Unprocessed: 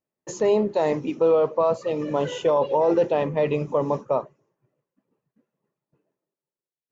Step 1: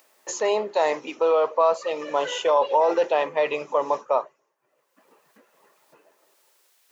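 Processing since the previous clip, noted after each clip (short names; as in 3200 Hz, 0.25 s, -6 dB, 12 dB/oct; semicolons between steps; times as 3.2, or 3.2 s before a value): HPF 740 Hz 12 dB/oct; upward compressor, threshold -47 dBFS; gain +6 dB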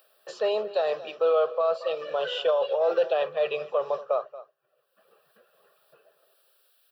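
echo 0.229 s -19 dB; limiter -13.5 dBFS, peak gain reduction 5 dB; fixed phaser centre 1400 Hz, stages 8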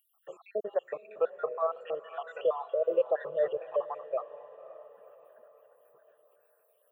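random spectral dropouts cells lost 69%; Butterworth band-stop 4900 Hz, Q 0.7; diffused feedback echo 0.527 s, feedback 48%, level -15.5 dB; gain -2 dB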